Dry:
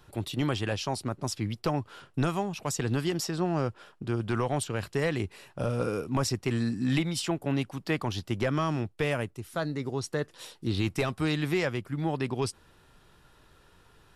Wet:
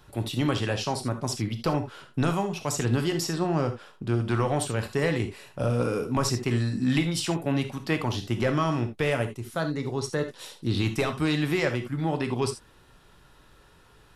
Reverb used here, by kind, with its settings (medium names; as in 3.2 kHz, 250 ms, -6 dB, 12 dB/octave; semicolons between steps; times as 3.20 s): gated-style reverb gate 100 ms flat, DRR 6 dB; trim +2 dB